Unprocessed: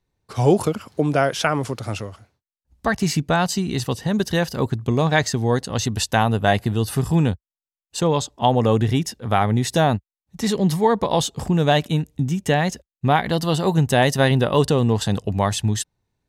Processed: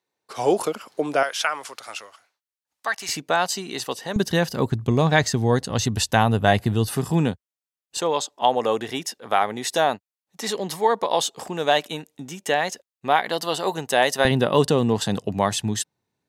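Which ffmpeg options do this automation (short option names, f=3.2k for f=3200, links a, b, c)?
-af "asetnsamples=n=441:p=0,asendcmd='1.23 highpass f 1000;3.09 highpass f 430;4.16 highpass f 120;4.72 highpass f 51;6.87 highpass f 170;7.97 highpass f 450;14.25 highpass f 160',highpass=400"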